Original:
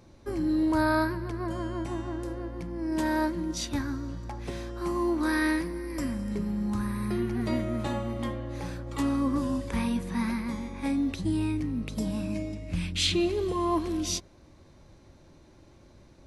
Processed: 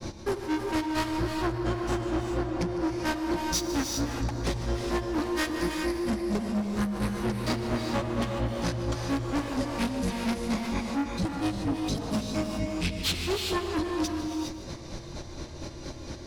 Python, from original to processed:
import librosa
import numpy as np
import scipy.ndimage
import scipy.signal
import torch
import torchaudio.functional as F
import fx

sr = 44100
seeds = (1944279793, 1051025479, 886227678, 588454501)

p1 = fx.peak_eq(x, sr, hz=5200.0, db=7.0, octaves=0.89)
p2 = fx.hum_notches(p1, sr, base_hz=50, count=6)
p3 = fx.rider(p2, sr, range_db=10, speed_s=2.0)
p4 = p2 + (p3 * librosa.db_to_amplitude(0.5))
p5 = np.clip(p4, -10.0 ** (-28.5 / 20.0), 10.0 ** (-28.5 / 20.0))
p6 = fx.granulator(p5, sr, seeds[0], grain_ms=134.0, per_s=4.3, spray_ms=12.0, spread_st=0)
p7 = p6 + fx.echo_single(p6, sr, ms=151, db=-20.0, dry=0)
p8 = fx.rev_gated(p7, sr, seeds[1], gate_ms=440, shape='rising', drr_db=7.0)
p9 = fx.env_flatten(p8, sr, amount_pct=50)
y = p9 * librosa.db_to_amplitude(4.0)